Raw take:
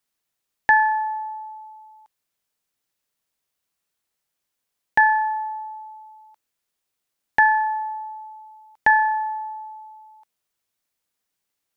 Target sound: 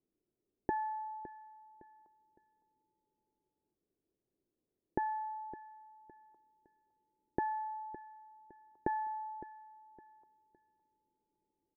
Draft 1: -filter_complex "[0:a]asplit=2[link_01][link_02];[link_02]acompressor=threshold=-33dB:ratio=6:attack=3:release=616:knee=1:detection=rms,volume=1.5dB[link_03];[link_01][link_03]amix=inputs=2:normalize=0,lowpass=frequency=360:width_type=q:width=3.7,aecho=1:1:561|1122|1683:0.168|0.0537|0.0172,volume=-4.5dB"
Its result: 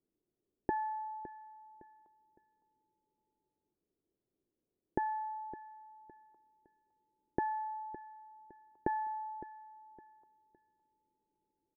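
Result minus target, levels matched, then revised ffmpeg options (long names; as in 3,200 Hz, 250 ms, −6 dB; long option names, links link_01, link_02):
downward compressor: peak gain reduction −5 dB
-filter_complex "[0:a]asplit=2[link_01][link_02];[link_02]acompressor=threshold=-39dB:ratio=6:attack=3:release=616:knee=1:detection=rms,volume=1.5dB[link_03];[link_01][link_03]amix=inputs=2:normalize=0,lowpass=frequency=360:width_type=q:width=3.7,aecho=1:1:561|1122|1683:0.168|0.0537|0.0172,volume=-4.5dB"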